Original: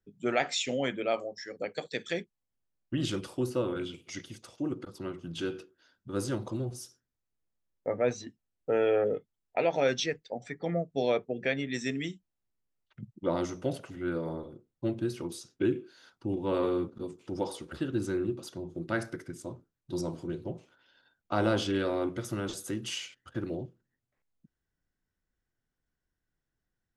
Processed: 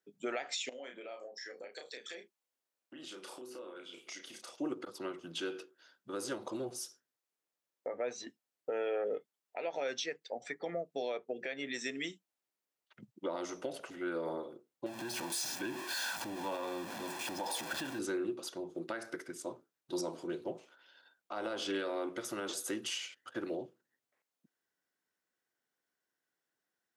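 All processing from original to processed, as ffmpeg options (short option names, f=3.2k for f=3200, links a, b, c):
-filter_complex "[0:a]asettb=1/sr,asplit=3[a][b][c];[a]atrim=end=0.694[d];[b]atrim=start=0.69:end=4.52,asetpts=PTS-STARTPTS,afade=t=in:d=0.004:c=qsin,afade=t=out:st=3.826:d=0.004:c=qsin,highpass=210,acompressor=threshold=-45dB:ratio=10:attack=3.2:release=140:knee=1:detection=peak,asplit=2[e][f];[f]adelay=32,volume=-5.5dB[g];[e][g]amix=inputs=2:normalize=0,atrim=end_sample=168903[h];[c]atrim=start=4.516[i];[d][h]acrossfade=d=0.004:c1=hsin:c2=qsin[j];[j][i]acrossfade=d=0.004:c1=qsin:c2=hsin,asettb=1/sr,asplit=3[k][l][m];[k]atrim=end=14.864[n];[l]atrim=start=14.86:end=17.99,asetpts=PTS-STARTPTS,afade=t=in:d=0.004:c=qsin,afade=t=out:st=3.126:d=0.004:c=qsin,aeval=exprs='val(0)+0.5*0.015*sgn(val(0))':c=same,aecho=1:1:1.2:0.72,atrim=end_sample=138033,acompressor=threshold=-34dB:ratio=2.5:attack=3.2:release=140:knee=1:detection=peak[o];[m]atrim=start=17.986[p];[n][o]acrossfade=d=0.004:c1=hsin:c2=qsin[q];[q][p]acrossfade=d=0.004:c1=qsin:c2=hsin,highpass=400,acompressor=threshold=-33dB:ratio=3,alimiter=level_in=5.5dB:limit=-24dB:level=0:latency=1:release=213,volume=-5.5dB,volume=2.5dB"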